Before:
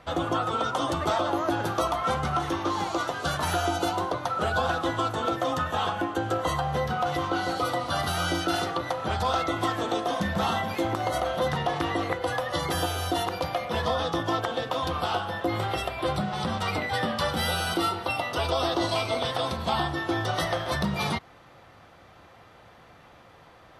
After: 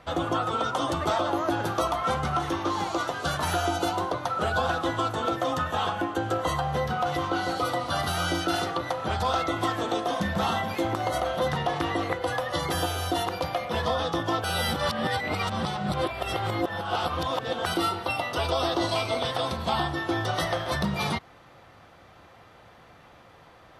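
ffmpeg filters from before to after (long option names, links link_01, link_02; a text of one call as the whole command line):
ffmpeg -i in.wav -filter_complex "[0:a]asplit=3[link_01][link_02][link_03];[link_01]atrim=end=14.442[link_04];[link_02]atrim=start=14.438:end=17.662,asetpts=PTS-STARTPTS,areverse[link_05];[link_03]atrim=start=17.658[link_06];[link_04][link_05]acrossfade=duration=0.004:curve1=hsin:curve2=hsin[link_07];[link_07][link_06]acrossfade=duration=0.004:curve1=hsin:curve2=hsin" out.wav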